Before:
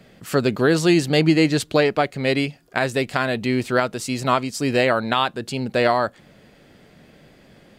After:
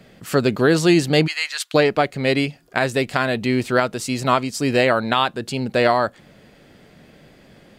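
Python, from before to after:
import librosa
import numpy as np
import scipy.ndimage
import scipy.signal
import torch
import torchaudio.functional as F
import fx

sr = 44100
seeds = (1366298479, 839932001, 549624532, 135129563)

y = fx.highpass(x, sr, hz=1100.0, slope=24, at=(1.26, 1.73), fade=0.02)
y = y * librosa.db_to_amplitude(1.5)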